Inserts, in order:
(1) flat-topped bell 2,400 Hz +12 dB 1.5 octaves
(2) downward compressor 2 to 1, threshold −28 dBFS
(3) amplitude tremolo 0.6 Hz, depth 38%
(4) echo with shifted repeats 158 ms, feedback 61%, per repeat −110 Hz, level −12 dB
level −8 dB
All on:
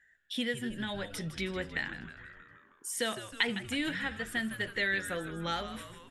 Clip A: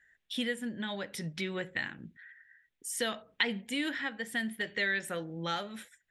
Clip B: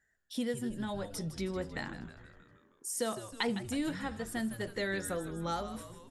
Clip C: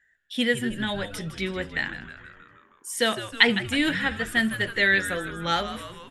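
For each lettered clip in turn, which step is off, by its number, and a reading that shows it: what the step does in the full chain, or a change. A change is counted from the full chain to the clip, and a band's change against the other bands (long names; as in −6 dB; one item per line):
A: 4, echo-to-direct ratio −10.0 dB to none audible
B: 1, 2 kHz band −9.0 dB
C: 2, average gain reduction 6.5 dB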